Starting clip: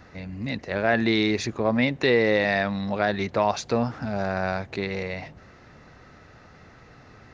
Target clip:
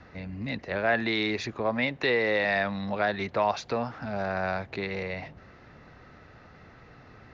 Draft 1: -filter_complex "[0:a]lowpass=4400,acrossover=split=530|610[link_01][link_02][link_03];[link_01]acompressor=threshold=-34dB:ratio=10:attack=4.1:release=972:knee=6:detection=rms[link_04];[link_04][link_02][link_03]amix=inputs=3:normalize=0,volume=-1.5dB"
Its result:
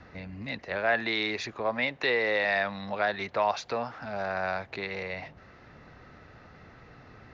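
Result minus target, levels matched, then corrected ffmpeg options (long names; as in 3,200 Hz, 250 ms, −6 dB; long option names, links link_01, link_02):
downward compressor: peak gain reduction +7.5 dB
-filter_complex "[0:a]lowpass=4400,acrossover=split=530|610[link_01][link_02][link_03];[link_01]acompressor=threshold=-25.5dB:ratio=10:attack=4.1:release=972:knee=6:detection=rms[link_04];[link_04][link_02][link_03]amix=inputs=3:normalize=0,volume=-1.5dB"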